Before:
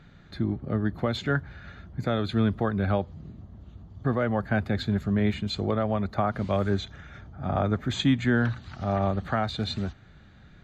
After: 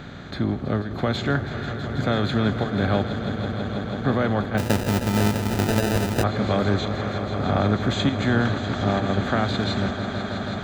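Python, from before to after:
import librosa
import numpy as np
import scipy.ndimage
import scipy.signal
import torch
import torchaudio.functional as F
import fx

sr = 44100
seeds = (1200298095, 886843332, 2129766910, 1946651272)

y = fx.bin_compress(x, sr, power=0.6)
y = fx.chopper(y, sr, hz=1.1, depth_pct=65, duty_pct=90)
y = fx.echo_swell(y, sr, ms=163, loudest=5, wet_db=-13.0)
y = fx.sample_hold(y, sr, seeds[0], rate_hz=1100.0, jitter_pct=0, at=(4.57, 6.22), fade=0.02)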